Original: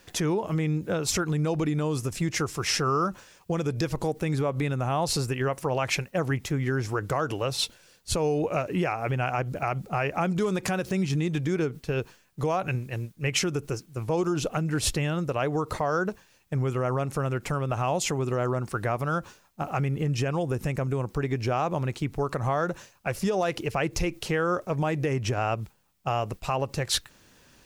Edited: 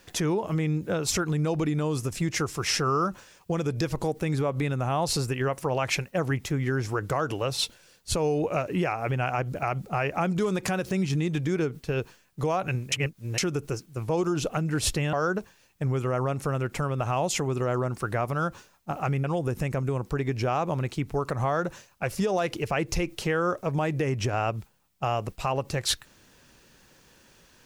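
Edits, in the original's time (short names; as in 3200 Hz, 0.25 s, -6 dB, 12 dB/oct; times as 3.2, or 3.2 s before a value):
12.92–13.38 reverse
15.13–15.84 cut
19.95–20.28 cut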